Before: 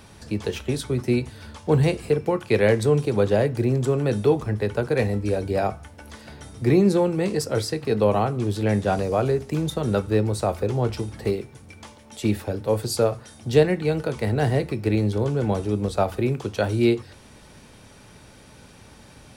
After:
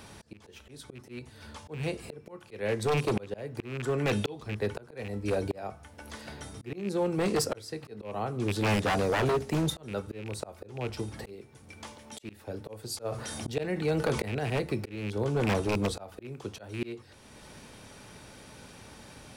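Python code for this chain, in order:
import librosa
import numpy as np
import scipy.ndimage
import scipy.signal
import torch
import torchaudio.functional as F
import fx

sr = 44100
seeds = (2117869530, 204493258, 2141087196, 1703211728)

y = fx.rattle_buzz(x, sr, strikes_db=-20.0, level_db=-19.0)
y = fx.peak_eq(y, sr, hz=fx.line((3.57, 980.0), (4.47, 4400.0)), db=11.0, octaves=0.71, at=(3.57, 4.47), fade=0.02)
y = fx.auto_swell(y, sr, attack_ms=641.0)
y = fx.low_shelf(y, sr, hz=160.0, db=-5.0)
y = 10.0 ** (-20.5 / 20.0) * (np.abs((y / 10.0 ** (-20.5 / 20.0) + 3.0) % 4.0 - 2.0) - 1.0)
y = fx.env_flatten(y, sr, amount_pct=50, at=(13.04, 14.38), fade=0.02)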